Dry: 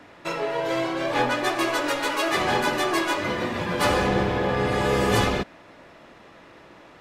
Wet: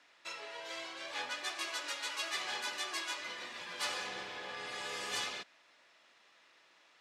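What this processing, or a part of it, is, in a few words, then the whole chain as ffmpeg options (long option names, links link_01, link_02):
piezo pickup straight into a mixer: -af "lowpass=5800,aderivative,volume=-1.5dB"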